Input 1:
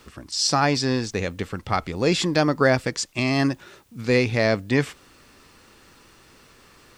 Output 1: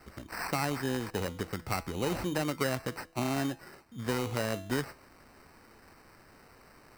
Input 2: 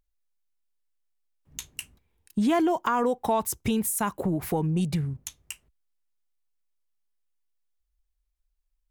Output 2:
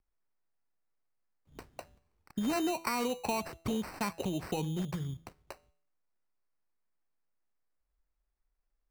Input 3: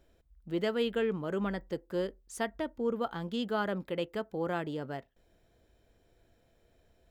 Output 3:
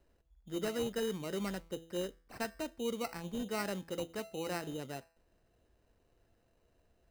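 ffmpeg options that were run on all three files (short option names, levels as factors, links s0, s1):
-filter_complex "[0:a]acrossover=split=320|1200|3900[s0][s1][s2][s3];[s0]acompressor=threshold=0.0316:ratio=4[s4];[s1]acompressor=threshold=0.0355:ratio=4[s5];[s2]acompressor=threshold=0.0224:ratio=4[s6];[s3]acompressor=threshold=0.00708:ratio=4[s7];[s4][s5][s6][s7]amix=inputs=4:normalize=0,bandreject=f=165.2:t=h:w=4,bandreject=f=330.4:t=h:w=4,bandreject=f=495.6:t=h:w=4,bandreject=f=660.8:t=h:w=4,bandreject=f=826:t=h:w=4,bandreject=f=991.2:t=h:w=4,bandreject=f=1156.4:t=h:w=4,bandreject=f=1321.6:t=h:w=4,bandreject=f=1486.8:t=h:w=4,bandreject=f=1652:t=h:w=4,bandreject=f=1817.2:t=h:w=4,bandreject=f=1982.4:t=h:w=4,bandreject=f=2147.6:t=h:w=4,bandreject=f=2312.8:t=h:w=4,bandreject=f=2478:t=h:w=4,bandreject=f=2643.2:t=h:w=4,bandreject=f=2808.4:t=h:w=4,bandreject=f=2973.6:t=h:w=4,bandreject=f=3138.8:t=h:w=4,bandreject=f=3304:t=h:w=4,bandreject=f=3469.2:t=h:w=4,acrusher=samples=13:mix=1:aa=0.000001,volume=0.596"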